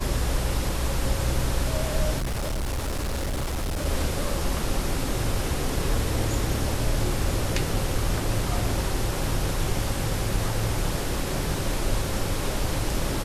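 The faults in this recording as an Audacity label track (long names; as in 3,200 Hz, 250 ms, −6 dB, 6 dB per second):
2.180000	3.860000	clipping −24.5 dBFS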